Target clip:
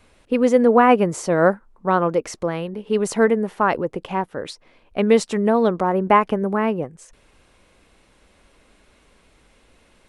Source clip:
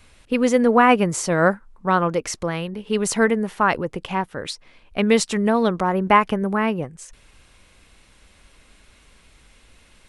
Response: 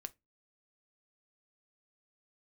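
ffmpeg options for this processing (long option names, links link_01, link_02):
-af "equalizer=frequency=460:width=0.42:gain=9,volume=-6dB"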